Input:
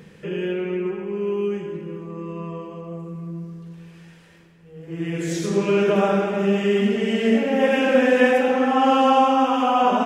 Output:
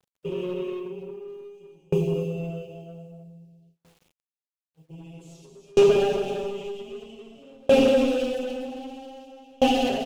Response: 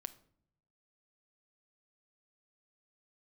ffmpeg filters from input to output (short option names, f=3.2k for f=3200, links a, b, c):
-filter_complex "[0:a]asettb=1/sr,asplit=3[a][b][c];[a]atrim=end=1.294[d];[b]atrim=start=1.29:end=2.02,asetpts=PTS-STARTPTS,afade=t=in:d=0.004:c=qsin,afade=t=out:st=0.726:d=0.004:c=qsin,highshelf=f=4.8k:g=9.5[e];[c]atrim=start=2.016[f];[d][e]acrossfade=d=0.004:c1=hsin:c2=qsin[g];[g][f]acrossfade=d=0.004:c1=qsin:c2=hsin,acrossover=split=2900[h][i];[h]asoftclip=type=hard:threshold=-18.5dB[j];[j][i]amix=inputs=2:normalize=0,aecho=1:1:55|58|115|224|256|277:0.188|0.133|0.1|0.178|0.668|0.422,acompressor=threshold=-23dB:ratio=5,asuperstop=centerf=1400:order=12:qfactor=0.78,agate=range=-29dB:threshold=-36dB:ratio=16:detection=peak,asoftclip=type=tanh:threshold=-22.5dB,aecho=1:1:7.4:0.93,acrusher=bits=10:mix=0:aa=0.000001,dynaudnorm=f=180:g=5:m=9.5dB,aeval=exprs='val(0)*pow(10,-36*if(lt(mod(0.52*n/s,1),2*abs(0.52)/1000),1-mod(0.52*n/s,1)/(2*abs(0.52)/1000),(mod(0.52*n/s,1)-2*abs(0.52)/1000)/(1-2*abs(0.52)/1000))/20)':c=same"